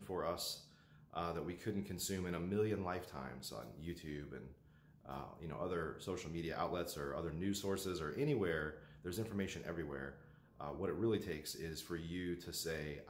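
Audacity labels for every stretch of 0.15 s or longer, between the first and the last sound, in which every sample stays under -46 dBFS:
0.580000	1.130000	silence
4.470000	5.060000	silence
8.770000	9.050000	silence
10.130000	10.610000	silence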